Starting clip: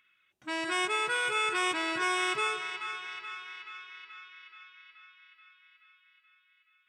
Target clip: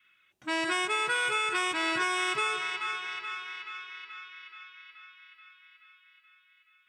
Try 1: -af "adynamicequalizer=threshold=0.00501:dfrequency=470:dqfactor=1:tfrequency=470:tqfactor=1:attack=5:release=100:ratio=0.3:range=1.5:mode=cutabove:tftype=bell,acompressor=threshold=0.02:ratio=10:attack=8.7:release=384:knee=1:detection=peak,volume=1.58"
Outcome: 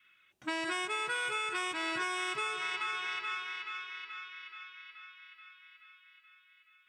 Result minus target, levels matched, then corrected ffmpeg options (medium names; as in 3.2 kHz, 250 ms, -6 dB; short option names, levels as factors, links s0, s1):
compression: peak gain reduction +6 dB
-af "adynamicequalizer=threshold=0.00501:dfrequency=470:dqfactor=1:tfrequency=470:tqfactor=1:attack=5:release=100:ratio=0.3:range=1.5:mode=cutabove:tftype=bell,acompressor=threshold=0.0422:ratio=10:attack=8.7:release=384:knee=1:detection=peak,volume=1.58"